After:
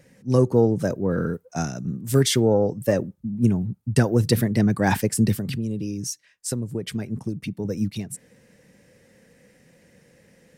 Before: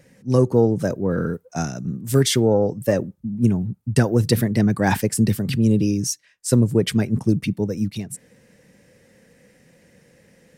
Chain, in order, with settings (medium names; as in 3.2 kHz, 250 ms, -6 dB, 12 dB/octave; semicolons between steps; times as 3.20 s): 5.37–7.65 s: compression 5:1, threshold -24 dBFS, peak gain reduction 11.5 dB; trim -1.5 dB